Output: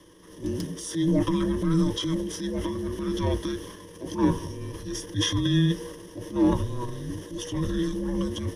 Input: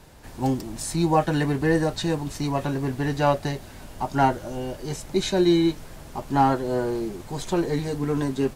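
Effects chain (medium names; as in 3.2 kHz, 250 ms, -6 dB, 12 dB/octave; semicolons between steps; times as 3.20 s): frequency shift -490 Hz; transient shaper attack -6 dB, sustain +7 dB; rippled EQ curve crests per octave 1.2, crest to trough 14 dB; trim -5 dB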